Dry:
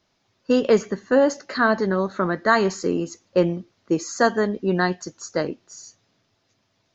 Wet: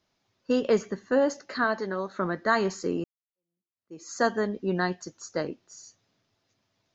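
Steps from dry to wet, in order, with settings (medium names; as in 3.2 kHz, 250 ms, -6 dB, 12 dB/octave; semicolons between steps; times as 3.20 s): 1.64–2.19 s: bass shelf 220 Hz -12 dB; 3.04–4.12 s: fade in exponential; trim -6 dB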